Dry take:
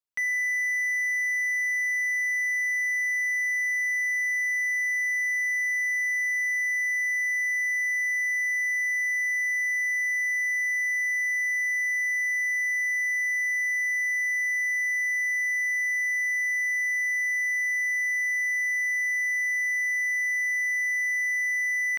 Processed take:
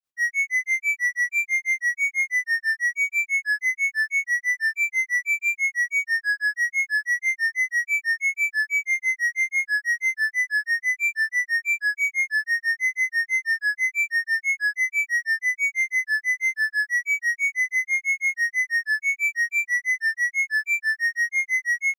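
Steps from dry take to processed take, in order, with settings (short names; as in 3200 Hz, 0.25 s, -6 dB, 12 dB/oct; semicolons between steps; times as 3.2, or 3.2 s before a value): grains 0.148 s, grains 6.1/s, pitch spread up and down by 3 st; gain +7 dB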